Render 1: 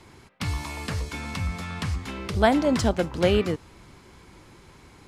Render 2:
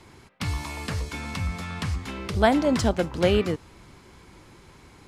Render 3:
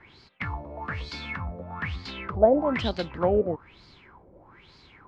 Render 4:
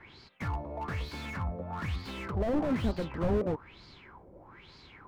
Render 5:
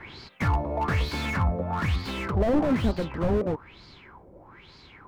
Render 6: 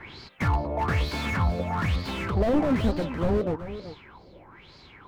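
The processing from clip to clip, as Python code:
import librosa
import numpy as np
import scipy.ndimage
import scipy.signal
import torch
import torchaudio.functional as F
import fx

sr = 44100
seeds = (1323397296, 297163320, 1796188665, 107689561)

y1 = x
y2 = fx.filter_lfo_lowpass(y1, sr, shape='sine', hz=1.1, low_hz=540.0, high_hz=4600.0, q=7.2)
y2 = y2 * librosa.db_to_amplitude(-6.0)
y3 = fx.slew_limit(y2, sr, full_power_hz=19.0)
y4 = fx.rider(y3, sr, range_db=10, speed_s=2.0)
y4 = y4 * librosa.db_to_amplitude(7.0)
y5 = y4 + 10.0 ** (-12.5 / 20.0) * np.pad(y4, (int(383 * sr / 1000.0), 0))[:len(y4)]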